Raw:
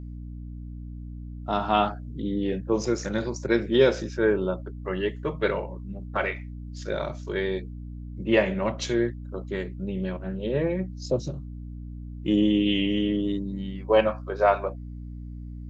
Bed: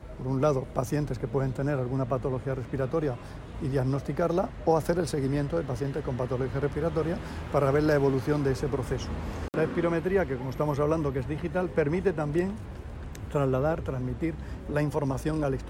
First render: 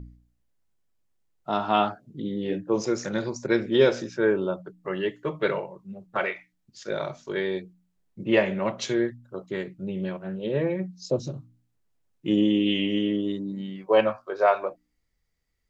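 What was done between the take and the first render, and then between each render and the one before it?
hum removal 60 Hz, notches 5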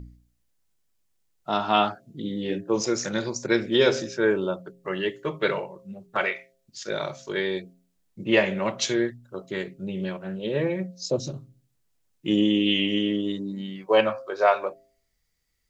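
high-shelf EQ 2,500 Hz +8.5 dB
hum removal 133.5 Hz, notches 5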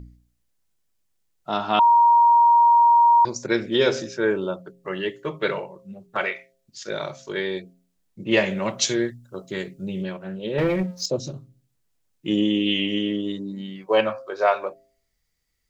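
0:01.79–0:03.25: beep over 942 Hz −11.5 dBFS
0:08.31–0:10.03: bass and treble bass +3 dB, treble +7 dB
0:10.58–0:11.06: leveller curve on the samples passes 2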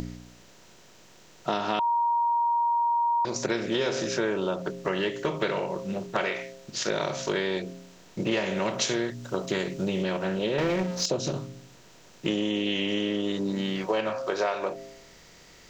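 compressor on every frequency bin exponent 0.6
downward compressor, threshold −24 dBFS, peak gain reduction 12 dB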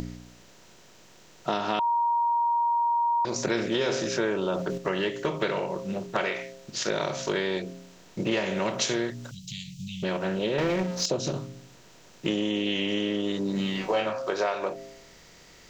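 0:03.25–0:04.78: level that may fall only so fast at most 45 dB per second
0:09.31–0:10.03: inverse Chebyshev band-stop filter 340–1,400 Hz, stop band 50 dB
0:13.53–0:14.06: flutter between parallel walls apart 3.4 metres, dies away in 0.25 s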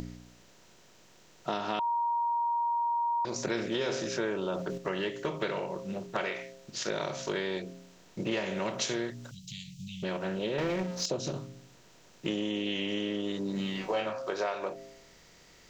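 level −5 dB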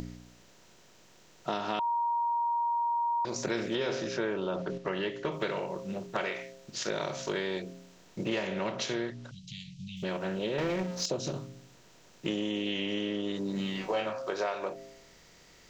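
0:03.75–0:05.32: low-pass filter 5,000 Hz
0:08.47–0:09.97: low-pass filter 4,900 Hz
0:12.70–0:13.36: low-pass filter 7,200 Hz

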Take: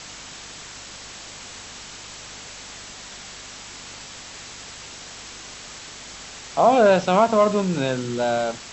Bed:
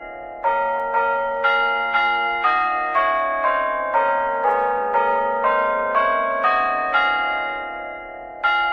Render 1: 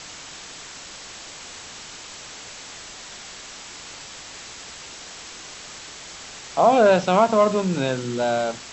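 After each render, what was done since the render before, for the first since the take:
hum removal 50 Hz, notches 5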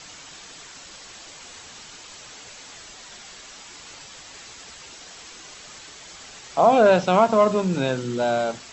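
broadband denoise 6 dB, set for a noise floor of −40 dBFS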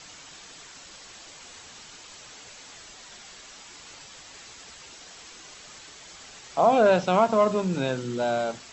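level −3.5 dB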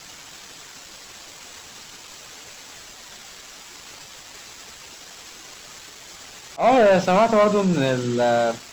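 leveller curve on the samples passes 2
volume swells 112 ms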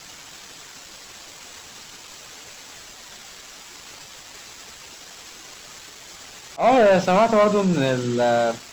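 no processing that can be heard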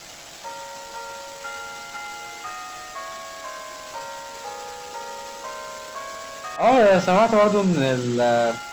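mix in bed −16.5 dB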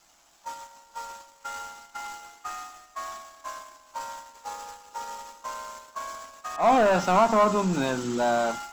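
noise gate −34 dBFS, range −16 dB
graphic EQ with 10 bands 125 Hz −11 dB, 500 Hz −9 dB, 1,000 Hz +4 dB, 2,000 Hz −6 dB, 4,000 Hz −5 dB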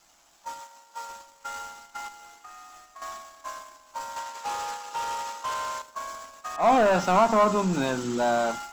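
0:00.60–0:01.09: high-pass filter 310 Hz 6 dB per octave
0:02.08–0:03.02: downward compressor 5 to 1, threshold −43 dBFS
0:04.16–0:05.82: mid-hump overdrive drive 19 dB, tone 5,200 Hz, clips at −23.5 dBFS

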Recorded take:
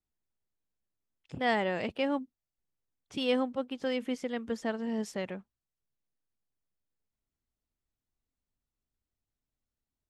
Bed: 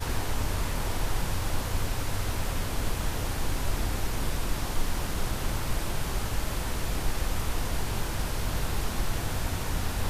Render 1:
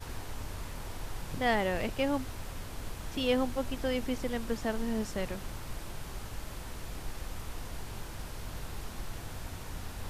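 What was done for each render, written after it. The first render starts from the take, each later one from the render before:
mix in bed −11 dB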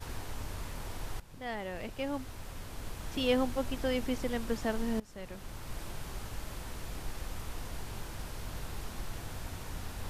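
0:01.20–0:03.22: fade in, from −15.5 dB
0:05.00–0:05.82: fade in, from −21.5 dB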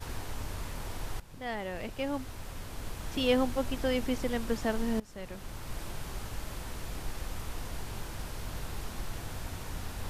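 level +2 dB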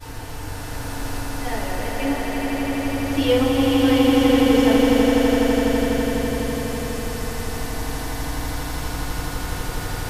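on a send: echo that builds up and dies away 83 ms, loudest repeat 8, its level −5 dB
on the sum: feedback delay network reverb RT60 0.65 s, low-frequency decay 0.95×, high-frequency decay 0.75×, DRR −4.5 dB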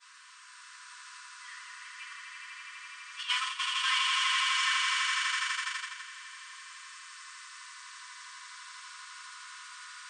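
noise gate −17 dBFS, range −12 dB
brick-wall band-pass 970–9,300 Hz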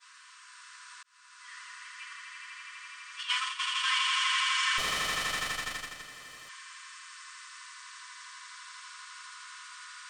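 0:01.03–0:01.60: fade in
0:04.78–0:06.49: lower of the sound and its delayed copy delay 1.6 ms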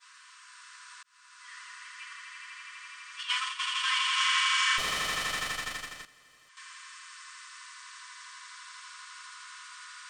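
0:04.15–0:04.76: double-tracking delay 29 ms −3 dB
0:06.05–0:06.57: clip gain −11.5 dB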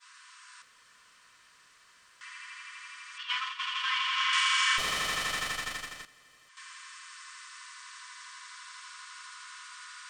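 0:00.62–0:02.21: fill with room tone
0:03.18–0:04.33: high-frequency loss of the air 130 metres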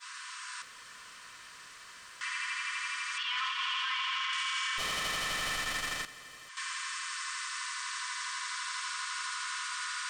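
in parallel at +2.5 dB: compressor whose output falls as the input rises −35 dBFS, ratio −1
on the sum: brickwall limiter −25 dBFS, peak gain reduction 11.5 dB

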